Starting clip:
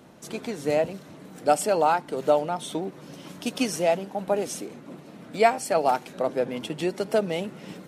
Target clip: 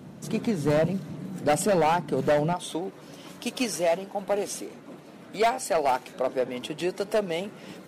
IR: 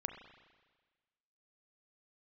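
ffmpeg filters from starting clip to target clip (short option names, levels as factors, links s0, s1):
-af "asetnsamples=n=441:p=0,asendcmd='2.53 equalizer g -4.5',equalizer=f=150:w=0.76:g=12,volume=7.5,asoftclip=hard,volume=0.133"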